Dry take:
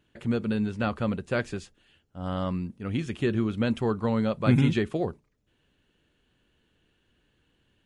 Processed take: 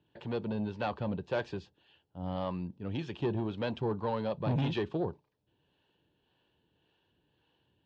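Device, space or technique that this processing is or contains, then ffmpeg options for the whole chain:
guitar amplifier with harmonic tremolo: -filter_complex "[0:a]acrossover=split=400[s0][s1];[s0]aeval=exprs='val(0)*(1-0.5/2+0.5/2*cos(2*PI*1.8*n/s))':c=same[s2];[s1]aeval=exprs='val(0)*(1-0.5/2-0.5/2*cos(2*PI*1.8*n/s))':c=same[s3];[s2][s3]amix=inputs=2:normalize=0,asoftclip=type=tanh:threshold=0.0708,highpass=96,equalizer=f=230:t=q:w=4:g=-7,equalizer=f=900:t=q:w=4:g=8,equalizer=f=1300:t=q:w=4:g=-8,equalizer=f=2100:t=q:w=4:g=-10,lowpass=f=4600:w=0.5412,lowpass=f=4600:w=1.3066"

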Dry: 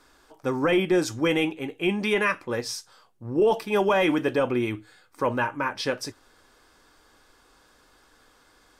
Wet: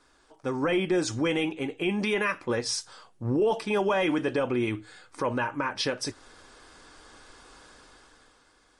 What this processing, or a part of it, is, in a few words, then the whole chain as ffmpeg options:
low-bitrate web radio: -af "dynaudnorm=f=100:g=17:m=3.76,alimiter=limit=0.211:level=0:latency=1:release=321,volume=0.631" -ar 48000 -c:a libmp3lame -b:a 48k

